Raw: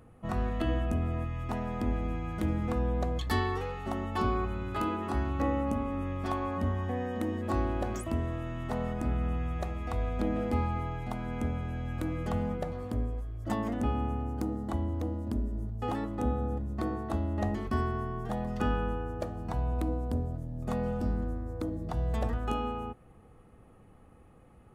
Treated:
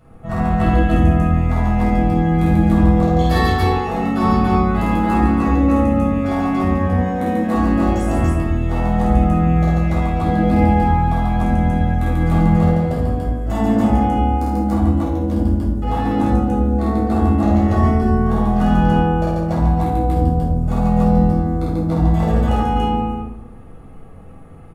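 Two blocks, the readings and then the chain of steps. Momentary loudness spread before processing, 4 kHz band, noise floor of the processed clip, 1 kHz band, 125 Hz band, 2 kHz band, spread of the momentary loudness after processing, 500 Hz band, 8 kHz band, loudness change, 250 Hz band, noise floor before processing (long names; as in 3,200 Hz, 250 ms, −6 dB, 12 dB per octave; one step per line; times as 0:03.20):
5 LU, +12.0 dB, −37 dBFS, +16.5 dB, +16.0 dB, +13.5 dB, 5 LU, +13.0 dB, can't be measured, +16.0 dB, +17.5 dB, −56 dBFS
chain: loudspeakers that aren't time-aligned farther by 17 metres −2 dB, 48 metres −2 dB, 98 metres 0 dB
rectangular room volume 780 cubic metres, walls furnished, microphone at 7 metres
level −1 dB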